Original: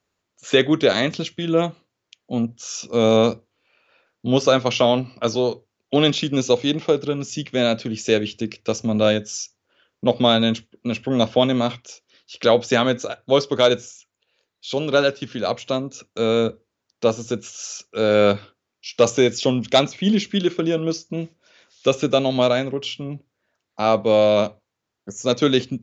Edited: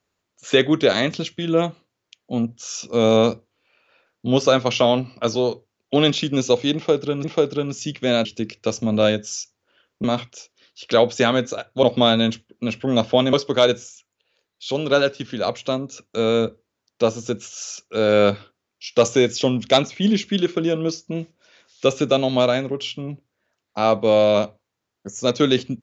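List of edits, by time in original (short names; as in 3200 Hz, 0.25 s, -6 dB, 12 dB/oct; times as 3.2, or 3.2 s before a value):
6.75–7.24 loop, 2 plays
7.76–8.27 cut
10.06–11.56 move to 13.35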